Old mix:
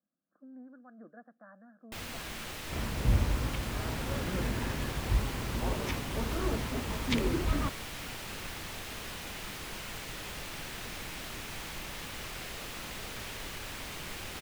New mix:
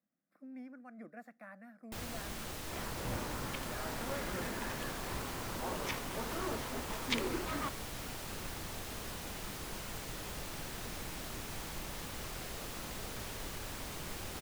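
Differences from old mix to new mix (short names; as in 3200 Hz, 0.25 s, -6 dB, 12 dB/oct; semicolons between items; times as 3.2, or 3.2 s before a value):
speech: remove rippled Chebyshev low-pass 1700 Hz, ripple 3 dB; first sound: add bell 2500 Hz -6.5 dB 1.7 oct; second sound: add HPF 580 Hz 6 dB/oct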